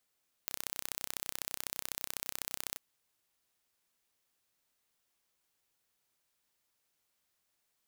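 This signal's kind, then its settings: pulse train 32 per s, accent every 2, -8 dBFS 2.30 s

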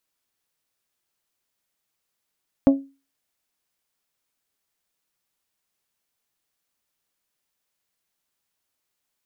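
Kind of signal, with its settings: glass hit bell, lowest mode 274 Hz, decay 0.31 s, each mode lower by 7.5 dB, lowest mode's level -8 dB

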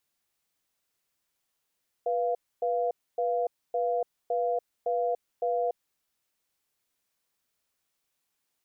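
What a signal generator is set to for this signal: cadence 489 Hz, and 694 Hz, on 0.29 s, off 0.27 s, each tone -27.5 dBFS 3.83 s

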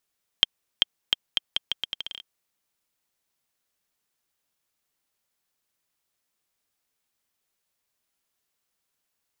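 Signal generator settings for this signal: bouncing ball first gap 0.39 s, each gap 0.79, 3.19 kHz, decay 19 ms -1.5 dBFS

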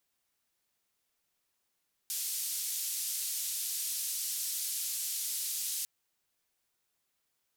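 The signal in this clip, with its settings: noise band 4.7–14 kHz, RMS -35.5 dBFS 3.75 s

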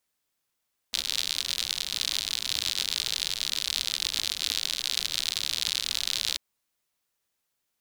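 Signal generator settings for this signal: rain from filtered ticks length 5.44 s, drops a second 81, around 3.9 kHz, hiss -20 dB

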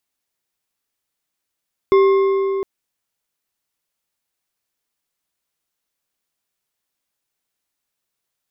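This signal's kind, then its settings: metal hit bar, length 0.71 s, lowest mode 390 Hz, modes 5, decay 3.88 s, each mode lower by 9.5 dB, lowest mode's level -8.5 dB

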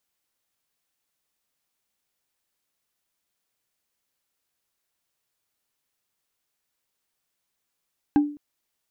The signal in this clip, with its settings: wood hit bar, length 0.21 s, lowest mode 293 Hz, decay 0.42 s, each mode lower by 10 dB, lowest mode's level -12 dB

